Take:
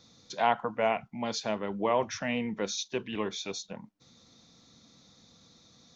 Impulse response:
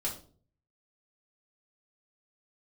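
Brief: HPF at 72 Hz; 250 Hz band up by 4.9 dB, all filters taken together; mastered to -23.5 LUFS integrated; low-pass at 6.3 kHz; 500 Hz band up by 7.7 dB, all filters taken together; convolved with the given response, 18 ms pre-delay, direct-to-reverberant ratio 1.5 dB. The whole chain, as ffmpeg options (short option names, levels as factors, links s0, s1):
-filter_complex "[0:a]highpass=72,lowpass=6300,equalizer=f=250:t=o:g=3.5,equalizer=f=500:t=o:g=9,asplit=2[s0][s1];[1:a]atrim=start_sample=2205,adelay=18[s2];[s1][s2]afir=irnorm=-1:irlink=0,volume=0.596[s3];[s0][s3]amix=inputs=2:normalize=0,volume=0.944"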